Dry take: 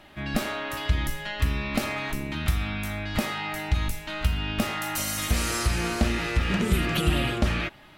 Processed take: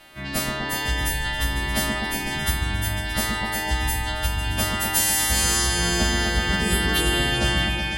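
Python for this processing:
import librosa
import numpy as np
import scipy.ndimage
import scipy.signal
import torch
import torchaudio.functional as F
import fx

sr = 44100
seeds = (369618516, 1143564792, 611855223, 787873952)

y = fx.freq_snap(x, sr, grid_st=2)
y = fx.echo_opening(y, sr, ms=125, hz=400, octaves=2, feedback_pct=70, wet_db=0)
y = fx.quant_dither(y, sr, seeds[0], bits=8, dither='none', at=(5.63, 6.69))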